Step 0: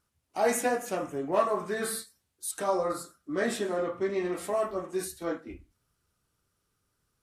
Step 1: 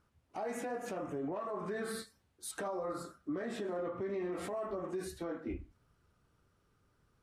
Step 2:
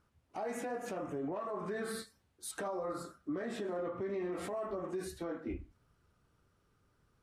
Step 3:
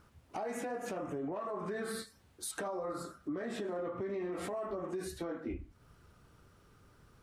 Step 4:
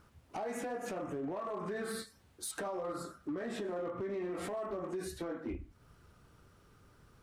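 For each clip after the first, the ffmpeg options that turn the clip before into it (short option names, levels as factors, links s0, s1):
-af "lowpass=f=1600:p=1,acompressor=threshold=0.0178:ratio=5,alimiter=level_in=4.47:limit=0.0631:level=0:latency=1:release=102,volume=0.224,volume=2.11"
-af anull
-af "acompressor=threshold=0.00178:ratio=2,volume=3.35"
-af "volume=42.2,asoftclip=hard,volume=0.0237"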